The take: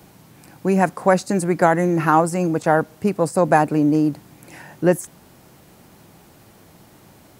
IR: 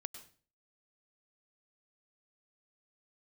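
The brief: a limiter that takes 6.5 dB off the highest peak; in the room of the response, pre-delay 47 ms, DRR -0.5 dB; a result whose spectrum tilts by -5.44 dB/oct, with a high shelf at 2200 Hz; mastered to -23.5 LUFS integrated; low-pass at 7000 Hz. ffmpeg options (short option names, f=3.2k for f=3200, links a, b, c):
-filter_complex "[0:a]lowpass=7k,highshelf=f=2.2k:g=-7.5,alimiter=limit=-9dB:level=0:latency=1,asplit=2[a][b];[1:a]atrim=start_sample=2205,adelay=47[c];[b][c]afir=irnorm=-1:irlink=0,volume=3.5dB[d];[a][d]amix=inputs=2:normalize=0,volume=-5.5dB"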